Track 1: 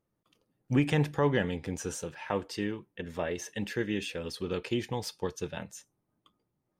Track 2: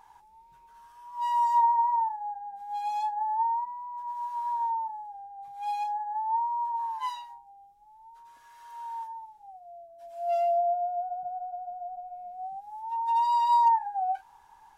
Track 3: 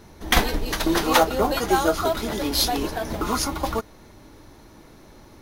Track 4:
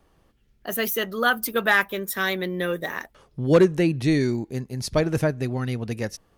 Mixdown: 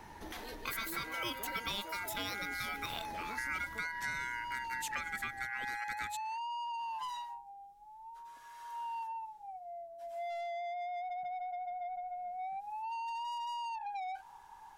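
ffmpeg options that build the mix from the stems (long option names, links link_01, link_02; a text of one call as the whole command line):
ffmpeg -i stem1.wav -i stem2.wav -i stem3.wav -i stem4.wav -filter_complex "[0:a]volume=-8.5dB[link_01];[1:a]acompressor=threshold=-29dB:ratio=6,asoftclip=type=tanh:threshold=-36dB,volume=1.5dB[link_02];[2:a]acompressor=threshold=-26dB:ratio=6,volume=-8.5dB[link_03];[3:a]volume=2.5dB[link_04];[link_02][link_03]amix=inputs=2:normalize=0,alimiter=level_in=9.5dB:limit=-24dB:level=0:latency=1,volume=-9.5dB,volume=0dB[link_05];[link_01][link_04]amix=inputs=2:normalize=0,aeval=exprs='val(0)*sin(2*PI*1800*n/s)':channel_layout=same,acompressor=threshold=-35dB:ratio=2,volume=0dB[link_06];[link_05][link_06]amix=inputs=2:normalize=0,bandreject=frequency=50:width_type=h:width=6,bandreject=frequency=100:width_type=h:width=6,acrossover=split=270|6200[link_07][link_08][link_09];[link_07]acompressor=threshold=-51dB:ratio=4[link_10];[link_08]acompressor=threshold=-37dB:ratio=4[link_11];[link_09]acompressor=threshold=-42dB:ratio=4[link_12];[link_10][link_11][link_12]amix=inputs=3:normalize=0" out.wav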